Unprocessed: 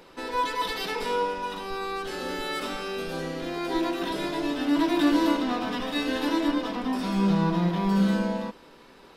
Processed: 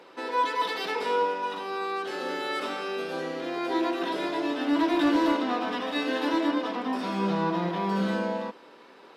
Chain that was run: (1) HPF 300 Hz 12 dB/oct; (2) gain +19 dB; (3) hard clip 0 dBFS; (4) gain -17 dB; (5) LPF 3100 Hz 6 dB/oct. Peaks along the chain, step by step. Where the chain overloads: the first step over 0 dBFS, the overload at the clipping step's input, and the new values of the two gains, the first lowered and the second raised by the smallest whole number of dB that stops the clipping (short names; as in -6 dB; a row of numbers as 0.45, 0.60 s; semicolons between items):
-13.5, +5.5, 0.0, -17.0, -17.0 dBFS; step 2, 5.5 dB; step 2 +13 dB, step 4 -11 dB